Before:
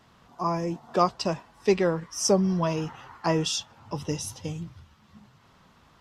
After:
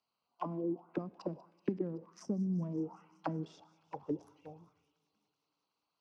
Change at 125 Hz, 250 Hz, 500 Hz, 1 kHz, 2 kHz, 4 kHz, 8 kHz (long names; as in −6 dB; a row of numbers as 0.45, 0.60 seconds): −11.0 dB, −8.5 dB, −15.5 dB, −17.0 dB, −20.0 dB, below −25 dB, below −30 dB